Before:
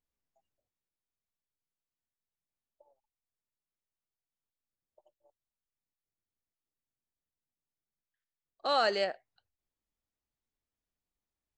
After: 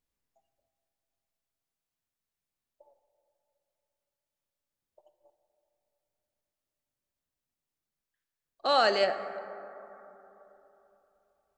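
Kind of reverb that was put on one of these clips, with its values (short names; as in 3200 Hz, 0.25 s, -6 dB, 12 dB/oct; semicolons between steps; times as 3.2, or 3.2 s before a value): plate-style reverb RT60 3.4 s, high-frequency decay 0.3×, DRR 9 dB; gain +3.5 dB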